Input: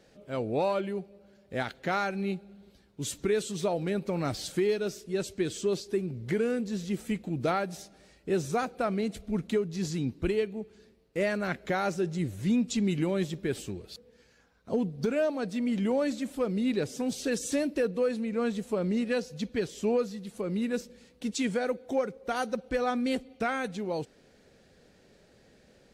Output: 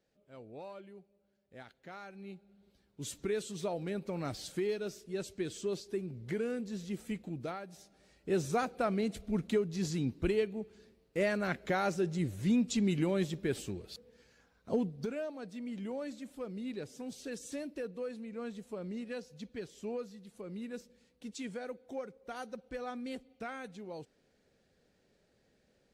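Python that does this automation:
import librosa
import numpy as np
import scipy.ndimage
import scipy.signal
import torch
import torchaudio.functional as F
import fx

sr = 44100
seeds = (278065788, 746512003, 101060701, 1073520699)

y = fx.gain(x, sr, db=fx.line((1.98, -19.0), (3.03, -7.0), (7.29, -7.0), (7.6, -14.5), (8.38, -2.5), (14.75, -2.5), (15.25, -12.0)))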